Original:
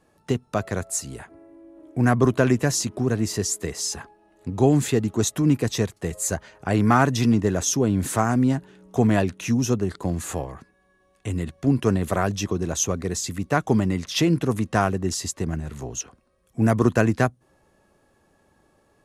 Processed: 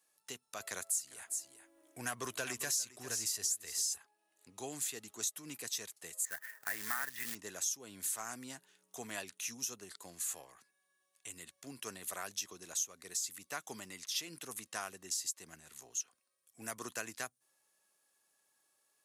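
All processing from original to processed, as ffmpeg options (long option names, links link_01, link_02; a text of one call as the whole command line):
ffmpeg -i in.wav -filter_complex "[0:a]asettb=1/sr,asplit=3[link_01][link_02][link_03];[link_01]atrim=end=0.604[link_04];[link_02]atrim=start=0.6:end=3.98,asetpts=PTS-STARTPTS,afade=type=in:duration=0.004:curve=qsin,afade=type=out:start_time=3.376:duration=0.004:curve=qsin,asubboost=boost=6.5:cutoff=86,acontrast=59,aecho=1:1:401:0.224,atrim=end_sample=149058[link_05];[link_03]atrim=start=3.976[link_06];[link_04][link_05]acrossfade=duration=0.004:curve1=hsin:curve2=qsin[link_07];[link_07][link_06]acrossfade=duration=0.004:curve1=qsin:curve2=hsin,asettb=1/sr,asplit=3[link_08][link_09][link_10];[link_08]atrim=end=6.254[link_11];[link_09]atrim=start=6.25:end=7.35,asetpts=PTS-STARTPTS,afade=type=in:duration=0.004:curve=qsin,afade=type=out:start_time=1.096:duration=0.004:curve=qsin,lowpass=frequency=1800:width_type=q:width=8.4,acrusher=bits=4:mode=log:mix=0:aa=0.000001[link_12];[link_10]atrim=start=7.346[link_13];[link_11][link_12]acrossfade=duration=0.004:curve1=hsin:curve2=qsin[link_14];[link_14][link_13]acrossfade=duration=0.004:curve1=qsin:curve2=hsin,aderivative,acompressor=threshold=-33dB:ratio=4,volume=-1.5dB" out.wav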